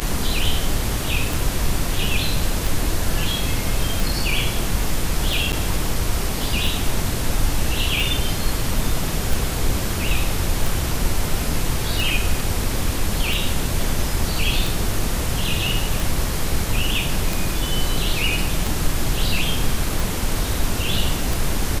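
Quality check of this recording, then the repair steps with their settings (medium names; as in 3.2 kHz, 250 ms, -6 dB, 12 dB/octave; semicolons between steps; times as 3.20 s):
tick 45 rpm -10 dBFS
5.52–5.53 s: dropout 8.6 ms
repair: de-click; interpolate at 5.52 s, 8.6 ms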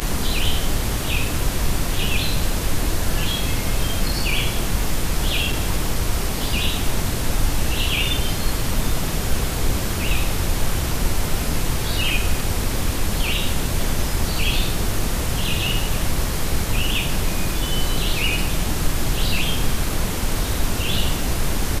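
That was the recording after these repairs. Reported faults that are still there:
nothing left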